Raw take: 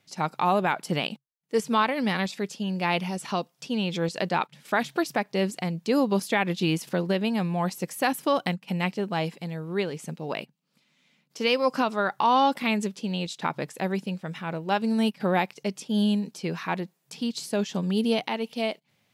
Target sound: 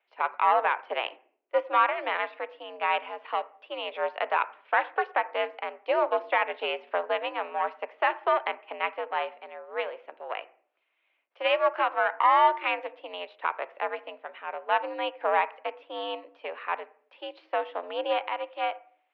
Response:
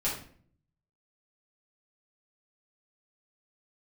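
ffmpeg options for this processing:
-filter_complex "[0:a]aeval=exprs='0.251*(cos(1*acos(clip(val(0)/0.251,-1,1)))-cos(1*PI/2))+0.0631*(cos(2*acos(clip(val(0)/0.251,-1,1)))-cos(2*PI/2))+0.0141*(cos(7*acos(clip(val(0)/0.251,-1,1)))-cos(7*PI/2))':channel_layout=same,asplit=2[link_01][link_02];[1:a]atrim=start_sample=2205,lowpass=frequency=2300:width=0.5412,lowpass=frequency=2300:width=1.3066[link_03];[link_02][link_03]afir=irnorm=-1:irlink=0,volume=-19dB[link_04];[link_01][link_04]amix=inputs=2:normalize=0,highpass=frequency=420:width_type=q:width=0.5412,highpass=frequency=420:width_type=q:width=1.307,lowpass=frequency=2800:width_type=q:width=0.5176,lowpass=frequency=2800:width_type=q:width=0.7071,lowpass=frequency=2800:width_type=q:width=1.932,afreqshift=80"

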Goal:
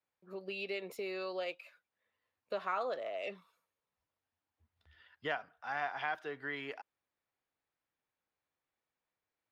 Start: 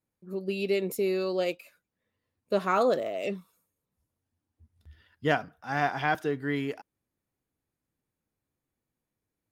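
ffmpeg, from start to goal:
ffmpeg -i in.wav -filter_complex "[0:a]acrossover=split=550 4500:gain=0.141 1 0.126[link_01][link_02][link_03];[link_01][link_02][link_03]amix=inputs=3:normalize=0,acompressor=threshold=-42dB:ratio=2,volume=1.5dB" out.wav

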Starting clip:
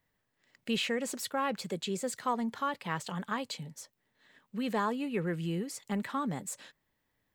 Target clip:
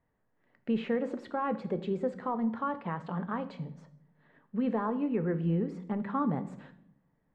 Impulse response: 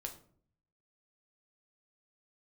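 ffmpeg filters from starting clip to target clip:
-filter_complex "[0:a]lowpass=1200,alimiter=level_in=1.5dB:limit=-24dB:level=0:latency=1:release=221,volume=-1.5dB,asplit=2[link_01][link_02];[1:a]atrim=start_sample=2205,asetrate=24696,aresample=44100[link_03];[link_02][link_03]afir=irnorm=-1:irlink=0,volume=-3.5dB[link_04];[link_01][link_04]amix=inputs=2:normalize=0"

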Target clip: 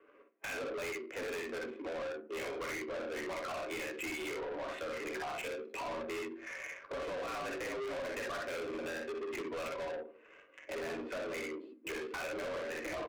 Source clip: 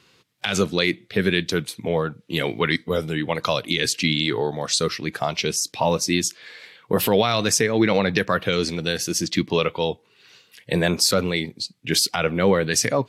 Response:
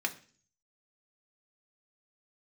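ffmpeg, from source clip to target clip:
-filter_complex "[0:a]highpass=frequency=250:width_type=q:width=0.5412,highpass=frequency=250:width_type=q:width=1.307,lowpass=frequency=2500:width_type=q:width=0.5176,lowpass=frequency=2500:width_type=q:width=0.7071,lowpass=frequency=2500:width_type=q:width=1.932,afreqshift=65,aecho=1:1:47|60:0.501|0.596[link_01];[1:a]atrim=start_sample=2205,asetrate=61740,aresample=44100[link_02];[link_01][link_02]afir=irnorm=-1:irlink=0,acompressor=threshold=-33dB:ratio=4,bandreject=frequency=850:width=12,adynamicsmooth=sensitivity=7.5:basefreq=870,asoftclip=type=tanh:threshold=-40dB,volume=3dB"

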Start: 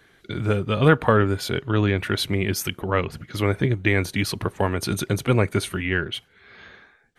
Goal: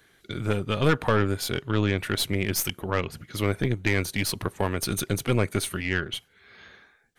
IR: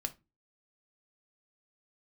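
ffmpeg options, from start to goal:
-af "highshelf=frequency=5100:gain=9.5,aeval=exprs='(tanh(4.47*val(0)+0.65)-tanh(0.65))/4.47':channel_layout=same,volume=-1.5dB"

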